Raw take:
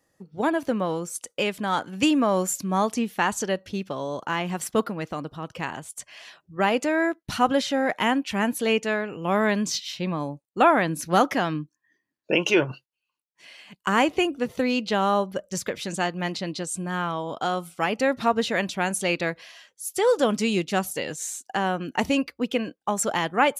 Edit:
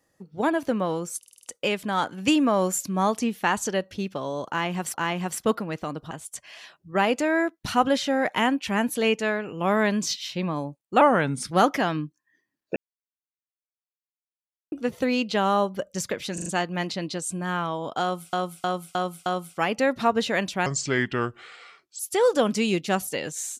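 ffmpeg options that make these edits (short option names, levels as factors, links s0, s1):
-filter_complex "[0:a]asplit=21[s0][s1][s2][s3][s4][s5][s6][s7][s8][s9][s10][s11][s12][s13][s14][s15][s16][s17][s18][s19][s20];[s0]atrim=end=1.232[s21];[s1]atrim=start=1.178:end=1.232[s22];[s2]atrim=start=1.178:end=1.232[s23];[s3]atrim=start=1.178:end=1.232[s24];[s4]atrim=start=1.178:end=1.232[s25];[s5]atrim=start=1.178:end=4.692[s26];[s6]atrim=start=4.228:end=5.402[s27];[s7]atrim=start=5.748:end=10.654[s28];[s8]atrim=start=10.65:end=11.08,asetpts=PTS-STARTPTS,asetrate=37926,aresample=44100[s29];[s9]atrim=start=11.076:end=12.33,asetpts=PTS-STARTPTS,afade=t=out:st=1.25:d=0.004:c=hsin[s30];[s10]atrim=start=12.33:end=14.29,asetpts=PTS-STARTPTS,volume=0[s31];[s11]atrim=start=14.29:end=15.952,asetpts=PTS-STARTPTS,afade=t=in:d=0.004:c=hsin[s32];[s12]atrim=start=15.908:end=15.952[s33];[s13]atrim=start=15.908:end=15.952[s34];[s14]atrim=start=15.908:end=17.782[s35];[s15]atrim=start=17.468:end=17.782[s36];[s16]atrim=start=17.468:end=17.782[s37];[s17]atrim=start=17.468:end=17.782[s38];[s18]atrim=start=17.468:end=18.874[s39];[s19]atrim=start=18.87:end=19.83,asetpts=PTS-STARTPTS,asetrate=31752,aresample=44100[s40];[s20]atrim=start=19.826[s41];[s21][s22]acrossfade=d=0.004:c1=hsin:c2=hsin[s42];[s42][s23]acrossfade=d=0.004:c1=hsin:c2=hsin[s43];[s43][s24]acrossfade=d=0.004:c1=hsin:c2=hsin[s44];[s44][s25]acrossfade=d=0.004:c1=hsin:c2=hsin[s45];[s45][s26]acrossfade=d=0.004:c1=hsin:c2=hsin[s46];[s46][s27]acrossfade=d=0.004:c1=hsin:c2=hsin[s47];[s47][s28]acrossfade=d=0.004:c1=hsin:c2=hsin[s48];[s48][s29]acrossfade=d=0.004:c1=hsin:c2=hsin[s49];[s30][s31][s32]concat=n=3:v=0:a=1[s50];[s49][s50]acrossfade=d=0.004:c1=hsin:c2=hsin[s51];[s51][s33]acrossfade=d=0.004:c1=hsin:c2=hsin[s52];[s52][s34]acrossfade=d=0.004:c1=hsin:c2=hsin[s53];[s53][s35]acrossfade=d=0.004:c1=hsin:c2=hsin[s54];[s54][s36]acrossfade=d=0.004:c1=hsin:c2=hsin[s55];[s55][s37]acrossfade=d=0.004:c1=hsin:c2=hsin[s56];[s56][s38]acrossfade=d=0.004:c1=hsin:c2=hsin[s57];[s57][s39]acrossfade=d=0.004:c1=hsin:c2=hsin[s58];[s58][s40]acrossfade=d=0.004:c1=hsin:c2=hsin[s59];[s59][s41]acrossfade=d=0.004:c1=hsin:c2=hsin"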